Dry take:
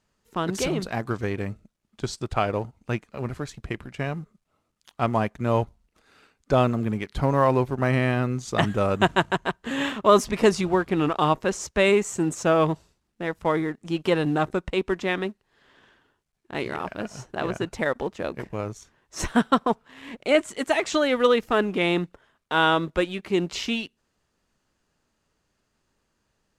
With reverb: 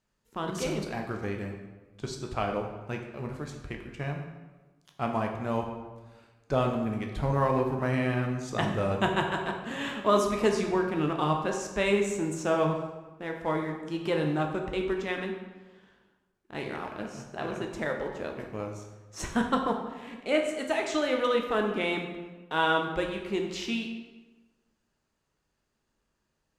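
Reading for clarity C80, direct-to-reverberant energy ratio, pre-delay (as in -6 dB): 7.5 dB, 2.0 dB, 9 ms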